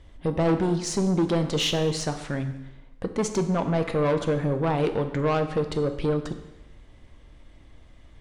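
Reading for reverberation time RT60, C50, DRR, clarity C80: 1.0 s, 10.0 dB, 7.0 dB, 12.0 dB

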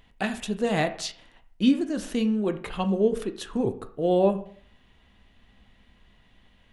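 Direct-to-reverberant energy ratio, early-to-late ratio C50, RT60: 8.0 dB, 13.0 dB, 0.50 s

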